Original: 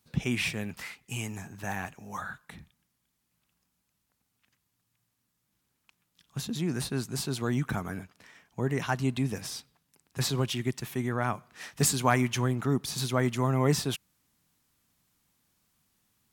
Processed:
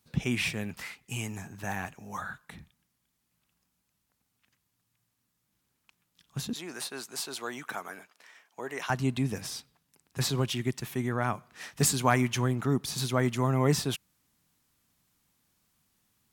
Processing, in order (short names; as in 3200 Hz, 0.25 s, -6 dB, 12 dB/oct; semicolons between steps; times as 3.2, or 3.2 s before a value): 6.53–8.9 HPF 540 Hz 12 dB/oct